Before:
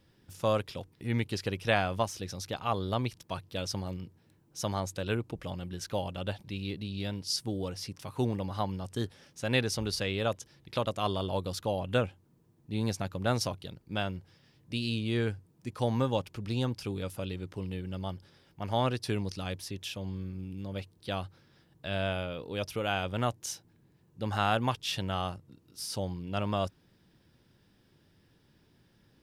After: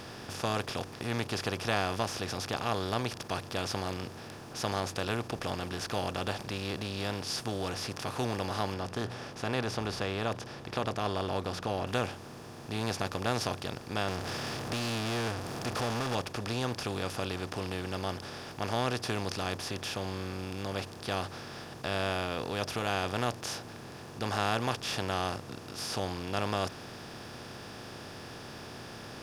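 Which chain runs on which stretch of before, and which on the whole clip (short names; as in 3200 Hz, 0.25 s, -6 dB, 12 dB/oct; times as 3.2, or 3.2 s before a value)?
8.74–11.87 LPF 1300 Hz 6 dB/oct + notches 60/120/180 Hz
14.08–16.15 compressor 2:1, threshold -38 dBFS + power-law curve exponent 0.5
whole clip: per-bin compression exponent 0.4; notch 540 Hz, Q 12; gain -6.5 dB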